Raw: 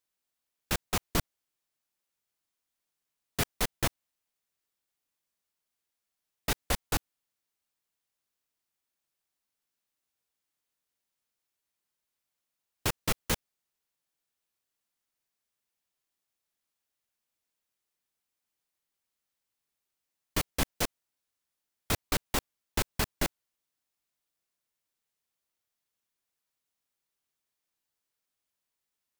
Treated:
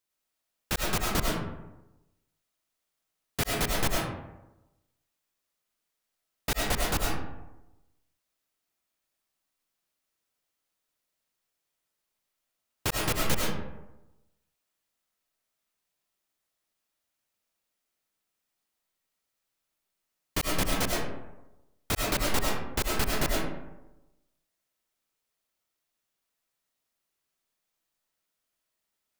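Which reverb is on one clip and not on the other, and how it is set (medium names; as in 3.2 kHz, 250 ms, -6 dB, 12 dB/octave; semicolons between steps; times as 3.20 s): algorithmic reverb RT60 1 s, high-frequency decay 0.45×, pre-delay 60 ms, DRR -2.5 dB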